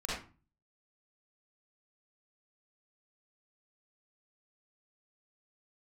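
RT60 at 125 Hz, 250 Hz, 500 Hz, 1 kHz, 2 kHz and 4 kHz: 0.65, 0.50, 0.35, 0.35, 0.30, 0.25 seconds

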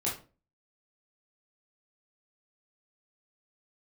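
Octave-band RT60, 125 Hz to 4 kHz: 0.45, 0.45, 0.40, 0.30, 0.25, 0.25 seconds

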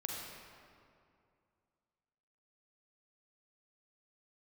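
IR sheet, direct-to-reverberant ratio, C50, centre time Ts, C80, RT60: −1.5 dB, −0.5 dB, 114 ms, 1.0 dB, 2.4 s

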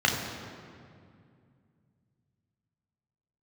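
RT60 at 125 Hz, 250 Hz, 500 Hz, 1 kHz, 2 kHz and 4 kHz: 3.7, 3.2, 2.5, 2.1, 1.9, 1.5 seconds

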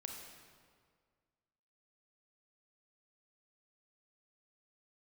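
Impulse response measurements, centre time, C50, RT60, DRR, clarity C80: 63 ms, 3.0 dB, 1.9 s, 1.5 dB, 4.5 dB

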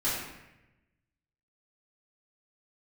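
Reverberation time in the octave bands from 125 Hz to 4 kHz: 1.4, 1.2, 1.0, 0.90, 1.0, 0.75 seconds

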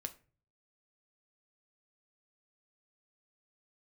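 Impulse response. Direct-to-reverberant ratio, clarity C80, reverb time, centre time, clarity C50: 6.5 dB, 22.5 dB, non-exponential decay, 5 ms, 17.0 dB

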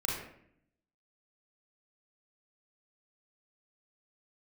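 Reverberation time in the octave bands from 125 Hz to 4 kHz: 1.0, 1.0, 0.70, 0.60, 0.65, 0.45 seconds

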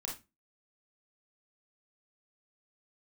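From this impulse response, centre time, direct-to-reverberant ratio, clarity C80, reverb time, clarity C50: 28 ms, −1.5 dB, 15.0 dB, 0.25 s, 5.5 dB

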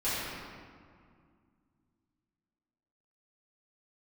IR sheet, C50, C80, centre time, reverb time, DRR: −4.0 dB, −1.5 dB, 146 ms, 2.1 s, −15.0 dB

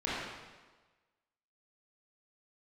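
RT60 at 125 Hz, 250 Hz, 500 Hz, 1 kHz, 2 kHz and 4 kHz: 1.2, 1.2, 1.3, 1.3, 1.2, 1.1 seconds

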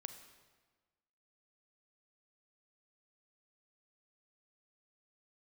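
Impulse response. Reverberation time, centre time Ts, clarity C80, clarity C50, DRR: 1.4 s, 18 ms, 10.5 dB, 9.0 dB, 8.0 dB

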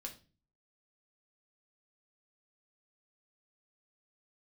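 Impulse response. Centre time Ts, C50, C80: 12 ms, 11.5 dB, 18.5 dB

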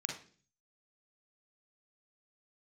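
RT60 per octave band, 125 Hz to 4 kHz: 0.75, 0.60, 0.50, 0.35, 0.40, 0.45 seconds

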